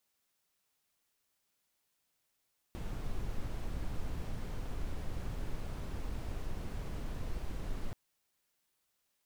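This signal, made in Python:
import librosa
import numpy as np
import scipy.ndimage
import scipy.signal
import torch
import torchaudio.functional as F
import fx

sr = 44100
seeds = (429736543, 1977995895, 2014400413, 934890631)

y = fx.noise_colour(sr, seeds[0], length_s=5.18, colour='brown', level_db=-36.5)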